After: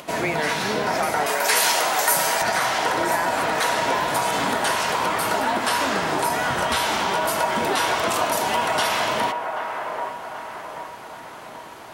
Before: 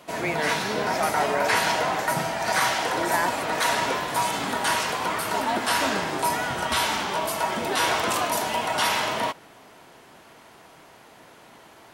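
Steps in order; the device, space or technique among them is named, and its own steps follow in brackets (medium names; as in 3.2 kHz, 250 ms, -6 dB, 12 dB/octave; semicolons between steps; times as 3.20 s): upward and downward compression (upward compressor, threshold -43 dBFS; compression, threshold -25 dBFS, peak gain reduction 7.5 dB); 1.26–2.42 s: RIAA curve recording; feedback echo behind a band-pass 782 ms, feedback 47%, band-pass 860 Hz, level -4 dB; trim +5.5 dB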